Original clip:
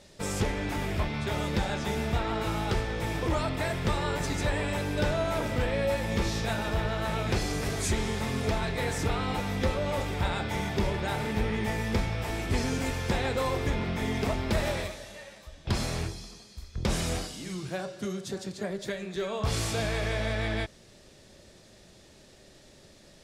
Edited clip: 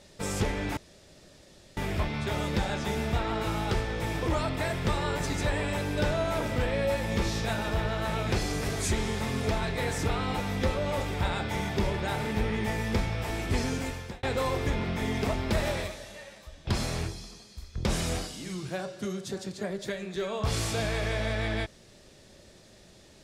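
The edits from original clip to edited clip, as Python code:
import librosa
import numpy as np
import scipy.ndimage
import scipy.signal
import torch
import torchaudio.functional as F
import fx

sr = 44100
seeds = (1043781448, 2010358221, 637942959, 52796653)

y = fx.edit(x, sr, fx.insert_room_tone(at_s=0.77, length_s=1.0),
    fx.fade_out_span(start_s=12.5, length_s=0.73, curve='qsin'), tone=tone)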